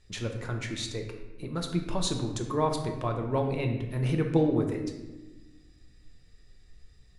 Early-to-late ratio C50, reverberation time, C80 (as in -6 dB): 6.0 dB, 1.2 s, 8.5 dB